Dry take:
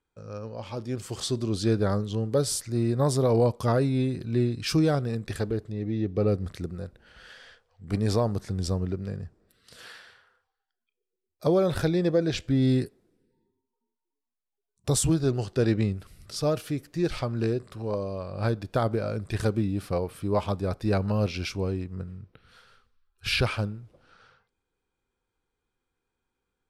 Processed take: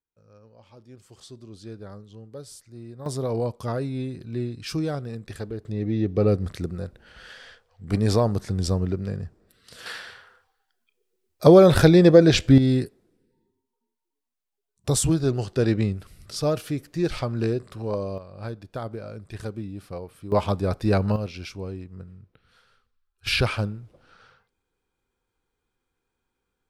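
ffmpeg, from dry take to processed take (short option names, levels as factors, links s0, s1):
-af "asetnsamples=n=441:p=0,asendcmd='3.06 volume volume -4.5dB;5.65 volume volume 4dB;9.86 volume volume 10.5dB;12.58 volume volume 2dB;18.18 volume volume -7.5dB;20.32 volume volume 4dB;21.16 volume volume -5dB;23.27 volume volume 2.5dB',volume=0.168"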